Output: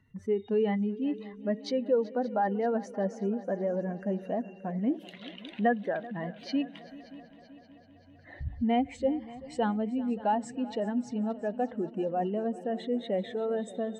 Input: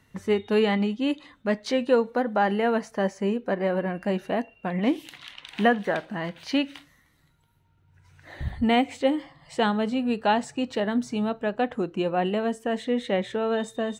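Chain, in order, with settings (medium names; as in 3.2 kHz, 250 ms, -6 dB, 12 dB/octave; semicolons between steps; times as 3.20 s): spectral contrast enhancement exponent 1.7; multi-head delay 192 ms, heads second and third, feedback 58%, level -19 dB; trim -5 dB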